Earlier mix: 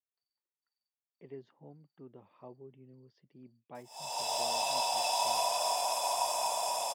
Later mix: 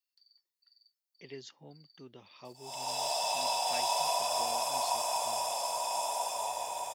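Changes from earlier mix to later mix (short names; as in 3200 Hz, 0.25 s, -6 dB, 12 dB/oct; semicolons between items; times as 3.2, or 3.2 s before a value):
speech: remove LPF 1000 Hz 12 dB/oct; background: entry -1.30 s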